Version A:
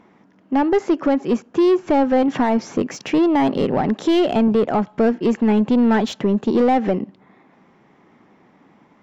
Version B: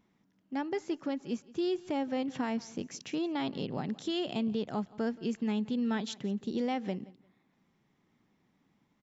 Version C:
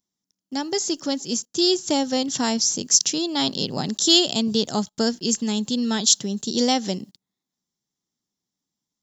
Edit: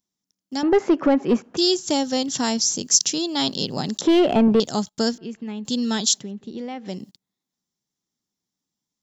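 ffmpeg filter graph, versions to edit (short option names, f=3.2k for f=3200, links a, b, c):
-filter_complex "[0:a]asplit=2[a][b];[1:a]asplit=2[c][d];[2:a]asplit=5[e][f][g][h][i];[e]atrim=end=0.632[j];[a]atrim=start=0.628:end=1.572[k];[f]atrim=start=1.568:end=4.012[l];[b]atrim=start=4.008:end=4.602[m];[g]atrim=start=4.598:end=5.182[n];[c]atrim=start=5.178:end=5.652[o];[h]atrim=start=5.648:end=6.28[p];[d]atrim=start=6.04:end=7.08[q];[i]atrim=start=6.84[r];[j][k]acrossfade=d=0.004:c1=hsin:c2=hsin[s];[s][l]acrossfade=d=0.004:c1=hsin:c2=hsin[t];[t][m]acrossfade=d=0.004:c1=hsin:c2=hsin[u];[u][n]acrossfade=d=0.004:c1=hsin:c2=hsin[v];[v][o]acrossfade=d=0.004:c1=hsin:c2=hsin[w];[w][p]acrossfade=d=0.004:c1=hsin:c2=hsin[x];[x][q]acrossfade=d=0.24:c1=tri:c2=tri[y];[y][r]acrossfade=d=0.24:c1=tri:c2=tri"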